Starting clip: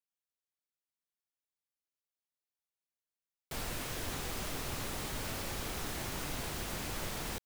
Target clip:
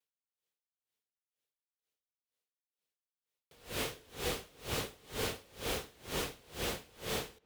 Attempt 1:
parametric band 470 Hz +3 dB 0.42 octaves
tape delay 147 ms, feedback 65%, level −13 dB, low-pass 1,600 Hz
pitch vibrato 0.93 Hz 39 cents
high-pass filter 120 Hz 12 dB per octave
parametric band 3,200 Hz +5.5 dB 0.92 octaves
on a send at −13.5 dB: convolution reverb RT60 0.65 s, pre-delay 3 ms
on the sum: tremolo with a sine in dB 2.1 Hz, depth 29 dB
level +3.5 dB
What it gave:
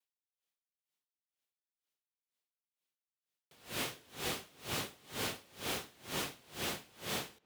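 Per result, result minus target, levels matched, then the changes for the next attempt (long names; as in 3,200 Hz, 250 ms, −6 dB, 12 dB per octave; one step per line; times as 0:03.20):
500 Hz band −4.0 dB; 125 Hz band −2.5 dB
change: first parametric band 470 Hz +10.5 dB 0.42 octaves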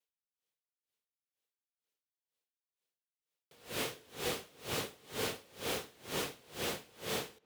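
125 Hz band −3.5 dB
change: high-pass filter 40 Hz 12 dB per octave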